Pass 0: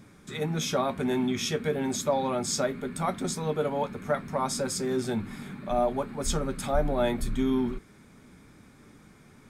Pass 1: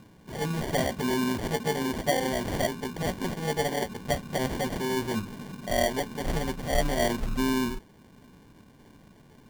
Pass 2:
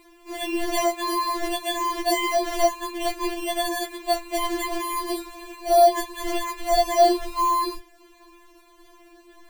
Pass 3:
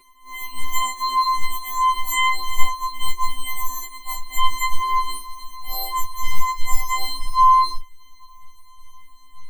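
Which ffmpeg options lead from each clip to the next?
ffmpeg -i in.wav -af "acrusher=samples=34:mix=1:aa=0.000001" out.wav
ffmpeg -i in.wav -af "afftfilt=real='re*4*eq(mod(b,16),0)':imag='im*4*eq(mod(b,16),0)':win_size=2048:overlap=0.75,volume=8dB" out.wav
ffmpeg -i in.wav -af "asubboost=boost=4:cutoff=59,afftfilt=real='re*2.45*eq(mod(b,6),0)':imag='im*2.45*eq(mod(b,6),0)':win_size=2048:overlap=0.75,volume=3dB" out.wav

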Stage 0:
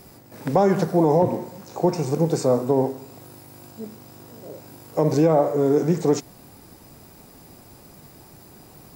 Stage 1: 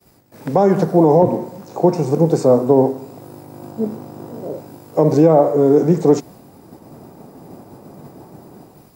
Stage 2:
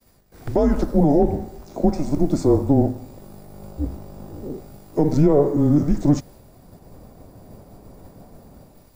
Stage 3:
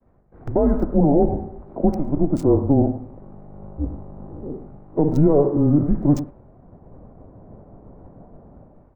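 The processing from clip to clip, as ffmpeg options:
ffmpeg -i in.wav -filter_complex "[0:a]agate=range=-33dB:threshold=-42dB:ratio=3:detection=peak,acrossover=split=120|1100[link_01][link_02][link_03];[link_02]dynaudnorm=framelen=220:gausssize=5:maxgain=16dB[link_04];[link_01][link_04][link_03]amix=inputs=3:normalize=0,volume=-1dB" out.wav
ffmpeg -i in.wav -af "afreqshift=-150,volume=-4dB" out.wav
ffmpeg -i in.wav -filter_complex "[0:a]acrossover=split=1500[link_01][link_02];[link_01]aecho=1:1:101:0.237[link_03];[link_02]acrusher=bits=4:mix=0:aa=0.5[link_04];[link_03][link_04]amix=inputs=2:normalize=0" out.wav

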